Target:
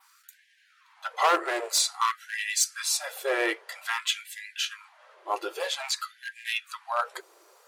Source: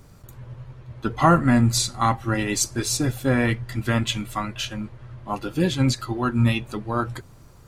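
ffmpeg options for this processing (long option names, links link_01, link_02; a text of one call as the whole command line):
ffmpeg -i in.wav -af "adynamicequalizer=threshold=0.00891:dfrequency=6600:dqfactor=2.1:tfrequency=6600:tqfactor=2.1:attack=5:release=100:ratio=0.375:range=2.5:mode=cutabove:tftype=bell,volume=15.5dB,asoftclip=hard,volume=-15.5dB,afftfilt=real='re*gte(b*sr/1024,320*pow(1600/320,0.5+0.5*sin(2*PI*0.51*pts/sr)))':imag='im*gte(b*sr/1024,320*pow(1600/320,0.5+0.5*sin(2*PI*0.51*pts/sr)))':win_size=1024:overlap=0.75" out.wav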